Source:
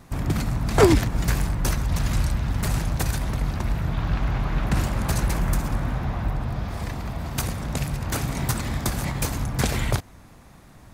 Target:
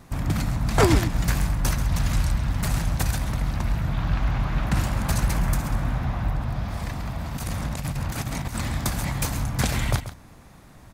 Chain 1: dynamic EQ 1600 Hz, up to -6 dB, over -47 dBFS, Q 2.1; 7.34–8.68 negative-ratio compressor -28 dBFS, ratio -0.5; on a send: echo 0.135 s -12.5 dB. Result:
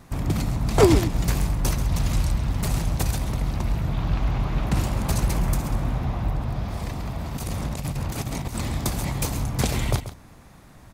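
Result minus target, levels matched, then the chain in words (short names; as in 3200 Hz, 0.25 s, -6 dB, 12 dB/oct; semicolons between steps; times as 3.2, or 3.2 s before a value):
2000 Hz band -4.0 dB
dynamic EQ 400 Hz, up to -6 dB, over -47 dBFS, Q 2.1; 7.34–8.68 negative-ratio compressor -28 dBFS, ratio -0.5; on a send: echo 0.135 s -12.5 dB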